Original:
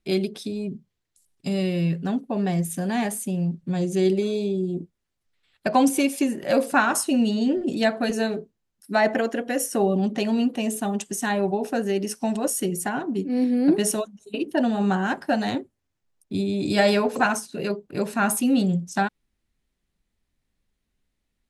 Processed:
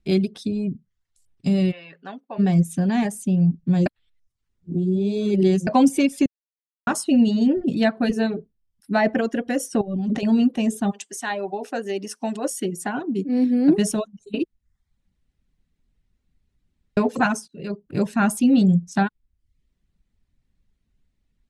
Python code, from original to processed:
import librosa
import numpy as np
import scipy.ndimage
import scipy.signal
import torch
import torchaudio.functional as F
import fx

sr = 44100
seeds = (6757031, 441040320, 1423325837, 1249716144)

y = fx.bandpass_edges(x, sr, low_hz=750.0, high_hz=3300.0, at=(1.71, 2.38), fade=0.02)
y = fx.peak_eq(y, sr, hz=7000.0, db=-7.0, octaves=0.68, at=(7.47, 9.22))
y = fx.over_compress(y, sr, threshold_db=-29.0, ratio=-1.0, at=(9.81, 10.23))
y = fx.highpass(y, sr, hz=fx.line((10.9, 670.0), (13.71, 170.0)), slope=12, at=(10.9, 13.71), fade=0.02)
y = fx.edit(y, sr, fx.reverse_span(start_s=3.86, length_s=1.81),
    fx.silence(start_s=6.26, length_s=0.61),
    fx.room_tone_fill(start_s=14.44, length_s=2.53),
    fx.fade_in_from(start_s=17.48, length_s=0.5, floor_db=-20.0), tone=tone)
y = fx.dereverb_blind(y, sr, rt60_s=0.51)
y = scipy.signal.sosfilt(scipy.signal.butter(2, 9100.0, 'lowpass', fs=sr, output='sos'), y)
y = fx.bass_treble(y, sr, bass_db=10, treble_db=-1)